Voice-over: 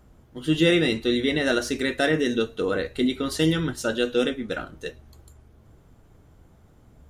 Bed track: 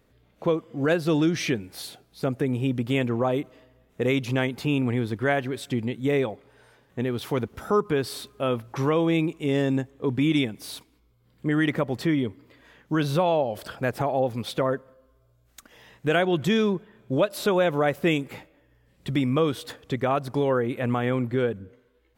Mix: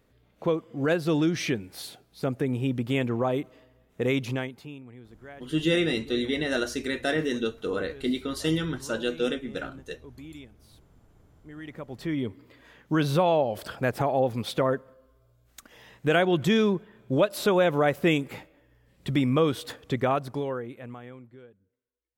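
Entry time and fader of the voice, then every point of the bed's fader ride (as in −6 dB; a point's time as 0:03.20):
5.05 s, −4.5 dB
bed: 0:04.27 −2 dB
0:04.84 −22 dB
0:11.48 −22 dB
0:12.37 0 dB
0:20.07 0 dB
0:21.58 −28.5 dB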